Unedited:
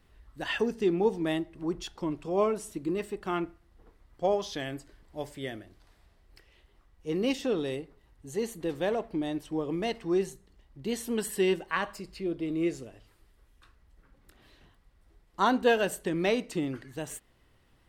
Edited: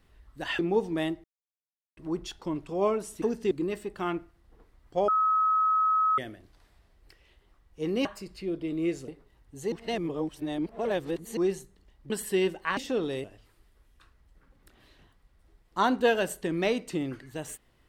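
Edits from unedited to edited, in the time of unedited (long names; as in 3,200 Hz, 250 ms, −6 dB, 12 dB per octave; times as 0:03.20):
0:00.59–0:00.88: move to 0:02.78
0:01.53: splice in silence 0.73 s
0:04.35–0:05.45: beep over 1,280 Hz −21 dBFS
0:07.32–0:07.79: swap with 0:11.83–0:12.86
0:08.43–0:10.08: reverse
0:10.81–0:11.16: remove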